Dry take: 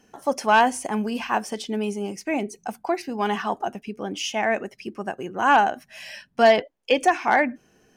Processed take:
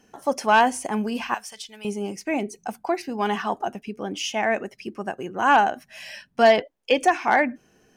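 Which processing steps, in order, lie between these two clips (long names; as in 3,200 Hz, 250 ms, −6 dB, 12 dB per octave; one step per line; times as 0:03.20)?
0:01.34–0:01.85: guitar amp tone stack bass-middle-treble 10-0-10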